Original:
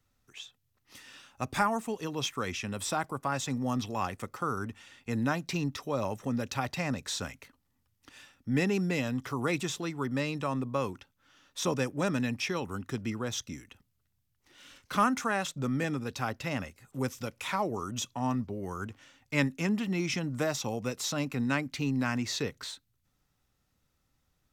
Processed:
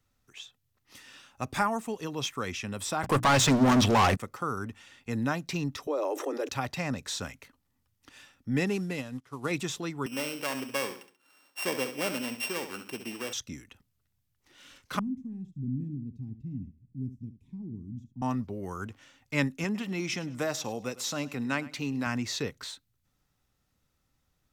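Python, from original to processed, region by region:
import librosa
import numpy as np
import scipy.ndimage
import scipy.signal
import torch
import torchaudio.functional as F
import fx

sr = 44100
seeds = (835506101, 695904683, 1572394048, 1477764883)

y = fx.chain(x, sr, fx.leveller(passes=5),
    fx.high_shelf(hz=10000.0, db=-9.0),
    fx.hum_notches(base_hz=60, count=5), at=(3.03, 4.17))
y = fx.chain(y, sr, fx.steep_highpass(hz=300.0, slope=96),
    fx.tilt_shelf(db=7.5, hz=630.0),
    fx.env_flatten(amount_pct=70), at=(5.87, 6.49))
y = fx.chain(y, sr, fx.cvsd(bps=64000),
    fx.upward_expand(threshold_db=-40.0, expansion=2.5), at=(8.66, 9.51))
y = fx.chain(y, sr, fx.sample_sort(block=16),
    fx.highpass(hz=310.0, slope=12),
    fx.echo_feedback(ms=68, feedback_pct=35, wet_db=-9.5), at=(10.06, 13.33))
y = fx.chain(y, sr, fx.cheby2_lowpass(hz=520.0, order=4, stop_db=40),
    fx.echo_single(ms=72, db=-12.5), at=(14.99, 18.22))
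y = fx.chain(y, sr, fx.low_shelf(hz=130.0, db=-10.0),
    fx.echo_feedback(ms=103, feedback_pct=29, wet_db=-19), at=(19.64, 22.07))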